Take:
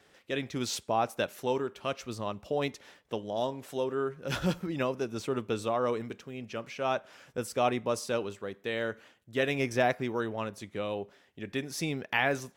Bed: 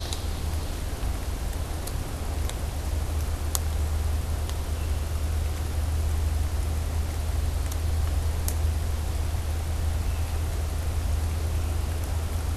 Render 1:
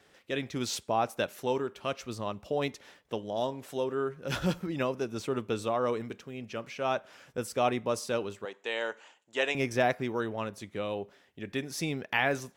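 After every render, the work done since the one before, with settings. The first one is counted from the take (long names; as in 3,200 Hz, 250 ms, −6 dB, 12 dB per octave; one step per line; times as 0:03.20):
0:08.45–0:09.55: loudspeaker in its box 430–9,100 Hz, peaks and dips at 890 Hz +10 dB, 2,800 Hz +5 dB, 7,100 Hz +10 dB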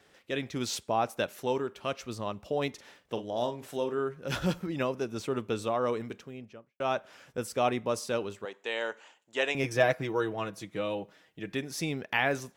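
0:02.72–0:03.99: double-tracking delay 42 ms −9.5 dB
0:06.15–0:06.80: fade out and dull
0:09.63–0:11.55: comb filter 6.3 ms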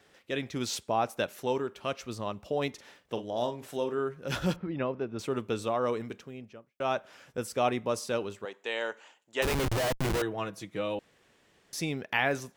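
0:04.56–0:05.19: high-frequency loss of the air 360 metres
0:09.42–0:10.22: comparator with hysteresis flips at −33 dBFS
0:10.99–0:11.73: fill with room tone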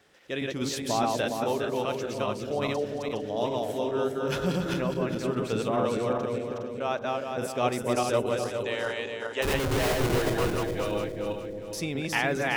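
feedback delay that plays each chunk backwards 206 ms, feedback 57%, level −1 dB
on a send: bucket-brigade delay 267 ms, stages 1,024, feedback 63%, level −7 dB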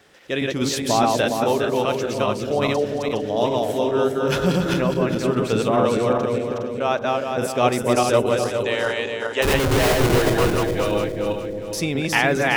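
level +8 dB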